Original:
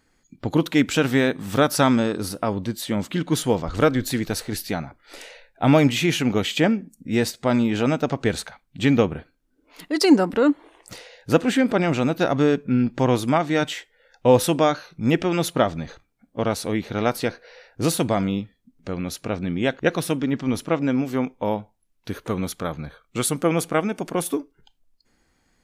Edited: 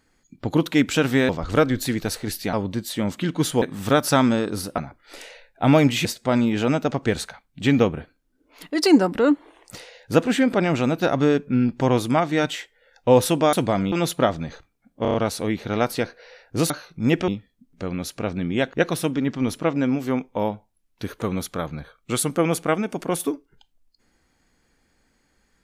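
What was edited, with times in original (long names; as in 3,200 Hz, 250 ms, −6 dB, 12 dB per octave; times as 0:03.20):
0:01.29–0:02.45: swap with 0:03.54–0:04.78
0:06.05–0:07.23: remove
0:14.71–0:15.29: swap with 0:17.95–0:18.34
0:16.39: stutter 0.03 s, 5 plays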